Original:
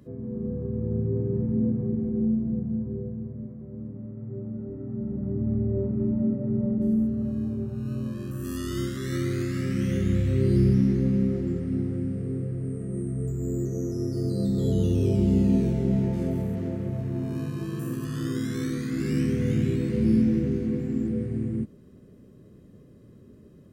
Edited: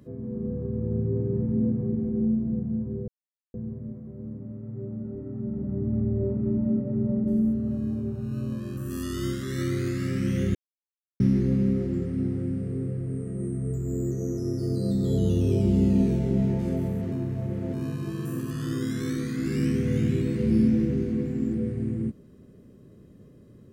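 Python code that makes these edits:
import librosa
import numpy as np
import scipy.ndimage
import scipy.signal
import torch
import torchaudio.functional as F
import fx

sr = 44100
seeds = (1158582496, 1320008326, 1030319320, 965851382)

y = fx.edit(x, sr, fx.insert_silence(at_s=3.08, length_s=0.46),
    fx.silence(start_s=10.09, length_s=0.65),
    fx.reverse_span(start_s=16.66, length_s=0.61), tone=tone)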